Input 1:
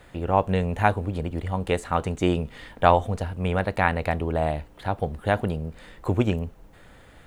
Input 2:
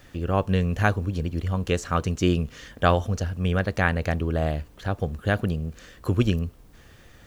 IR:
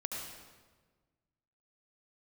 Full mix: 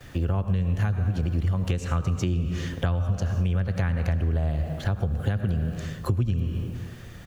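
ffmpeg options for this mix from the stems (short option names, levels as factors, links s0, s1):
-filter_complex "[0:a]volume=0.422[s0];[1:a]equalizer=f=71:w=1.9:g=3,volume=-1,adelay=6.4,volume=1.19,asplit=2[s1][s2];[s2]volume=0.422[s3];[2:a]atrim=start_sample=2205[s4];[s3][s4]afir=irnorm=-1:irlink=0[s5];[s0][s1][s5]amix=inputs=3:normalize=0,acrossover=split=190[s6][s7];[s7]acompressor=threshold=0.0355:ratio=3[s8];[s6][s8]amix=inputs=2:normalize=0,equalizer=f=130:t=o:w=0.52:g=6,acompressor=threshold=0.0891:ratio=6"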